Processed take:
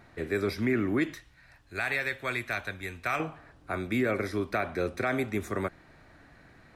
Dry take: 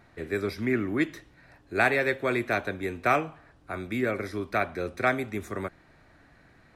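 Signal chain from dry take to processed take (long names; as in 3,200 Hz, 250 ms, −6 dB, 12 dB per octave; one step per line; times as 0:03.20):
0:01.14–0:03.20: parametric band 350 Hz −13.5 dB 2.7 octaves
brickwall limiter −20 dBFS, peak gain reduction 9.5 dB
level +2 dB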